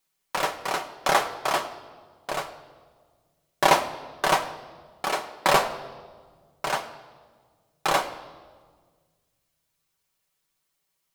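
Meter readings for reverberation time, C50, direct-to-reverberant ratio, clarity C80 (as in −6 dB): non-exponential decay, 13.0 dB, 2.5 dB, 14.0 dB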